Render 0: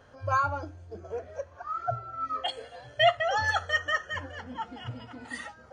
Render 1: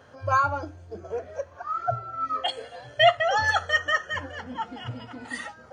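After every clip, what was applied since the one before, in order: high-pass 87 Hz; trim +4 dB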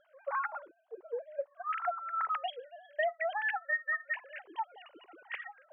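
formants replaced by sine waves; compression 8:1, threshold -30 dBFS, peak gain reduction 19.5 dB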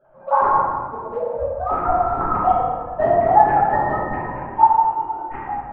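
in parallel at -6 dB: decimation with a swept rate 39×, swing 160% 2.3 Hz; on the sum: resonant low-pass 920 Hz, resonance Q 4.9; reverberation RT60 1.6 s, pre-delay 5 ms, DRR -11 dB

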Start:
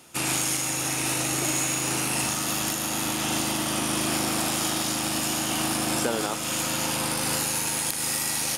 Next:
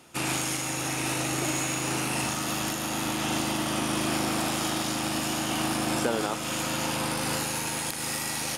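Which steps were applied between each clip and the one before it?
treble shelf 4.8 kHz -7.5 dB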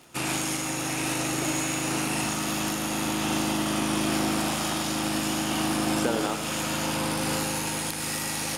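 crackle 110 per s -38 dBFS; on a send: two-band feedback delay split 1.6 kHz, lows 95 ms, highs 738 ms, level -10 dB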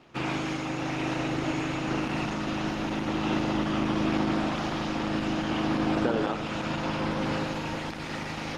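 distance through air 220 m; trim +1.5 dB; Opus 16 kbps 48 kHz

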